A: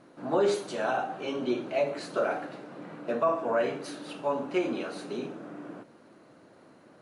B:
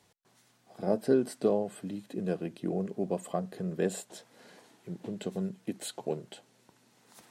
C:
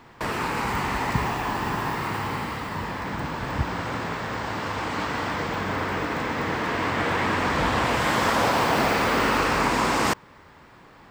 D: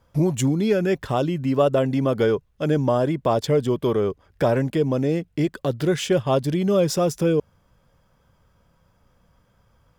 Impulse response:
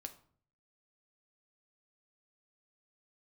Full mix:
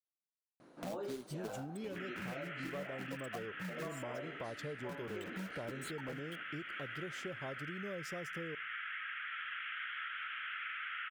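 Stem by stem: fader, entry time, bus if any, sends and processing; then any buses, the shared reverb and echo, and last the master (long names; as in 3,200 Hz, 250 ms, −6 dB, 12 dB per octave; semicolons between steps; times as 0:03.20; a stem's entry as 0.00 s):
−2.0 dB, 0.60 s, no send, automatic ducking −10 dB, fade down 1.80 s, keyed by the second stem
0.0 dB, 0.00 s, no send, spectral dynamics exaggerated over time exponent 3; log-companded quantiser 4 bits; multiband upward and downward compressor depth 70%
−6.5 dB, 1.75 s, no send, Chebyshev band-pass filter 1,300–3,300 Hz, order 5
−18.0 dB, 1.15 s, send −16 dB, no processing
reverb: on, RT60 0.50 s, pre-delay 4 ms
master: downward compressor 4 to 1, threshold −41 dBFS, peak gain reduction 12.5 dB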